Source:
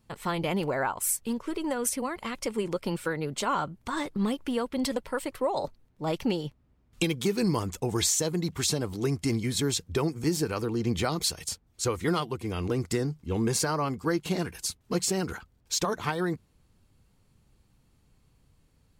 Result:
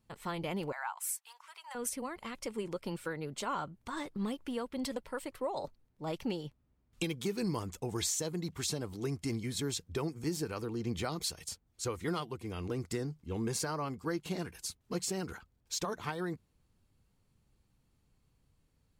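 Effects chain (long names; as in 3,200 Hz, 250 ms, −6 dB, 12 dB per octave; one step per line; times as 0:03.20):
0:00.72–0:01.75: elliptic high-pass filter 810 Hz, stop band 70 dB
level −8 dB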